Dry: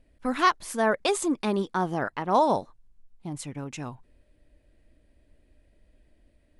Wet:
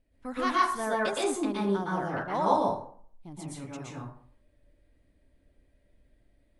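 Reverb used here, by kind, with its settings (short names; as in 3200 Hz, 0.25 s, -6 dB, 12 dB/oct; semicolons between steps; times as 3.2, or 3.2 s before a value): plate-style reverb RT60 0.53 s, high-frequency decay 0.55×, pre-delay 0.105 s, DRR -6 dB; gain -10 dB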